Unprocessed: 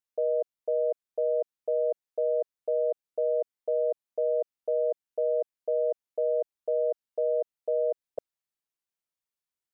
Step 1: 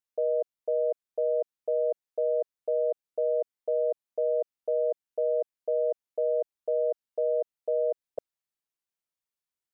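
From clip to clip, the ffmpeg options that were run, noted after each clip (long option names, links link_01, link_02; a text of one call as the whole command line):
ffmpeg -i in.wav -af anull out.wav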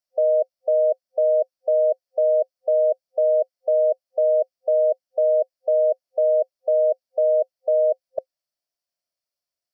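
ffmpeg -i in.wav -af "superequalizer=8b=3.55:14b=2.82" out.wav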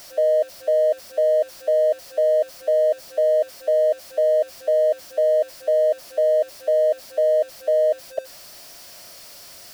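ffmpeg -i in.wav -af "aeval=exprs='val(0)+0.5*0.0178*sgn(val(0))':channel_layout=same" out.wav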